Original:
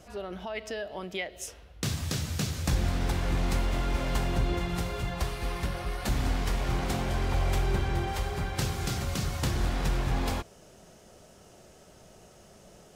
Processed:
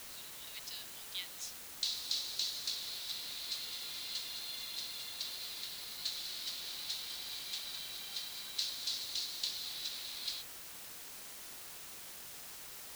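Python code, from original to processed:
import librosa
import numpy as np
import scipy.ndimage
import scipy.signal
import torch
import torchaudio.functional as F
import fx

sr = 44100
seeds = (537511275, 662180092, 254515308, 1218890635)

p1 = fx.ladder_bandpass(x, sr, hz=4400.0, resonance_pct=70)
p2 = fx.quant_dither(p1, sr, seeds[0], bits=8, dither='triangular')
p3 = p1 + (p2 * 10.0 ** (-4.0 / 20.0))
y = p3 * 10.0 ** (3.0 / 20.0)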